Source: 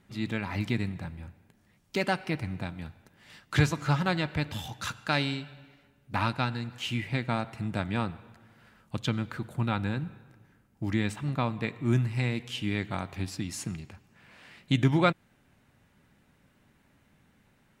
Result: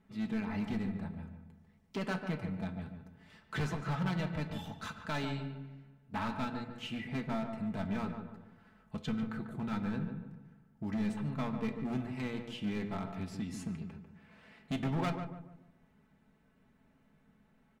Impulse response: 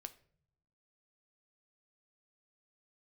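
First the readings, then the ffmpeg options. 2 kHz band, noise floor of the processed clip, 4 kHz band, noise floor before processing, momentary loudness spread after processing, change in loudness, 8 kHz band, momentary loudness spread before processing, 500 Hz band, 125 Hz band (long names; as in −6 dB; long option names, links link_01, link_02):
−9.5 dB, −68 dBFS, −11.0 dB, −66 dBFS, 14 LU, −7.5 dB, below −10 dB, 12 LU, −7.5 dB, −9.0 dB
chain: -filter_complex "[0:a]highshelf=frequency=2600:gain=-10.5,aecho=1:1:4.6:0.62,asoftclip=type=hard:threshold=-25.5dB,asplit=2[link_01][link_02];[link_02]adelay=145,lowpass=frequency=1300:poles=1,volume=-6dB,asplit=2[link_03][link_04];[link_04]adelay=145,lowpass=frequency=1300:poles=1,volume=0.4,asplit=2[link_05][link_06];[link_06]adelay=145,lowpass=frequency=1300:poles=1,volume=0.4,asplit=2[link_07][link_08];[link_08]adelay=145,lowpass=frequency=1300:poles=1,volume=0.4,asplit=2[link_09][link_10];[link_10]adelay=145,lowpass=frequency=1300:poles=1,volume=0.4[link_11];[link_01][link_03][link_05][link_07][link_09][link_11]amix=inputs=6:normalize=0[link_12];[1:a]atrim=start_sample=2205[link_13];[link_12][link_13]afir=irnorm=-1:irlink=0"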